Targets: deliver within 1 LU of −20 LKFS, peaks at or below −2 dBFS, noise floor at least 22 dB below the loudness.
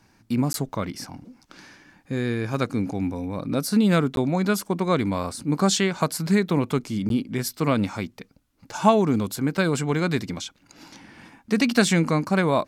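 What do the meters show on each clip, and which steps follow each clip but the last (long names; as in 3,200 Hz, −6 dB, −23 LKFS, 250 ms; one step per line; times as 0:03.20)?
number of dropouts 3; longest dropout 12 ms; integrated loudness −24.0 LKFS; sample peak −4.5 dBFS; target loudness −20.0 LKFS
→ repair the gap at 0:00.53/0:04.16/0:07.09, 12 ms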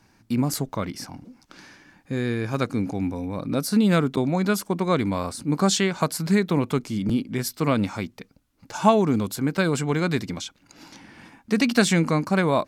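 number of dropouts 0; integrated loudness −24.0 LKFS; sample peak −4.5 dBFS; target loudness −20.0 LKFS
→ level +4 dB
brickwall limiter −2 dBFS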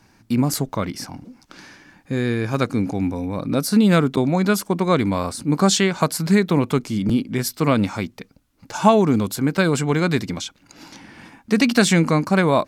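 integrated loudness −20.0 LKFS; sample peak −2.0 dBFS; background noise floor −58 dBFS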